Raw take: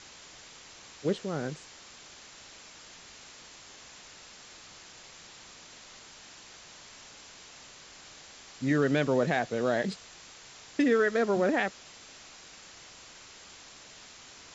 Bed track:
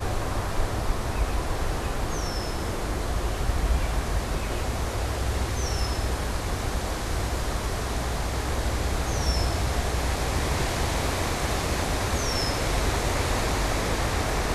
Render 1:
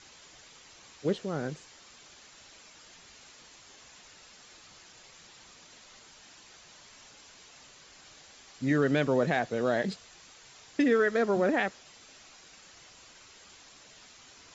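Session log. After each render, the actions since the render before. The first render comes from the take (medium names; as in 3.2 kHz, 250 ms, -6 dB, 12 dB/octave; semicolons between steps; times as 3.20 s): noise reduction 6 dB, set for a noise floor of -51 dBFS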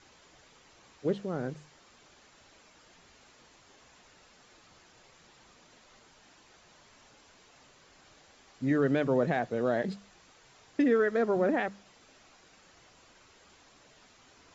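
treble shelf 2.1 kHz -10 dB; hum notches 50/100/150/200 Hz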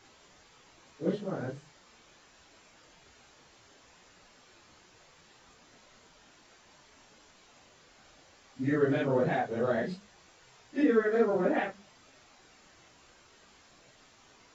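phase randomisation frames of 100 ms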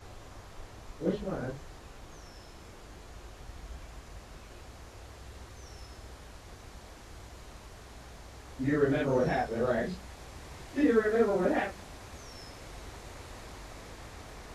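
add bed track -21 dB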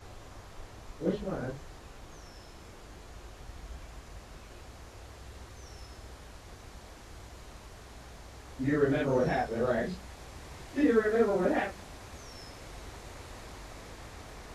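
no audible change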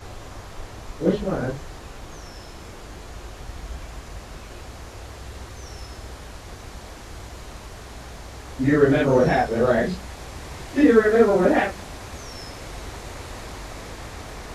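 trim +10 dB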